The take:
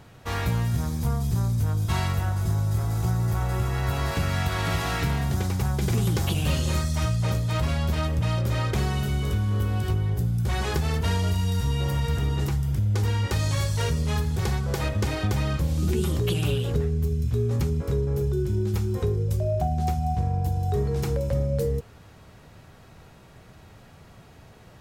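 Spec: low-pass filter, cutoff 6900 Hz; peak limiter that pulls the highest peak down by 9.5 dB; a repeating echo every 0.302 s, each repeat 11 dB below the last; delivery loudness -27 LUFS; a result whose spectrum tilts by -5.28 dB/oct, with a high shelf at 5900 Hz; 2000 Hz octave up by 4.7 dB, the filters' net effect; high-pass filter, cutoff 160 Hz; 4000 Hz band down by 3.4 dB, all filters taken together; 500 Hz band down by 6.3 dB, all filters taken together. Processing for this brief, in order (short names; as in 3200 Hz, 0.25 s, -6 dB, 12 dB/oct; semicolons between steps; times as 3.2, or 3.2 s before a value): HPF 160 Hz; LPF 6900 Hz; bell 500 Hz -8.5 dB; bell 2000 Hz +8.5 dB; bell 4000 Hz -5 dB; high shelf 5900 Hz -8.5 dB; limiter -24 dBFS; feedback echo 0.302 s, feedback 28%, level -11 dB; gain +5.5 dB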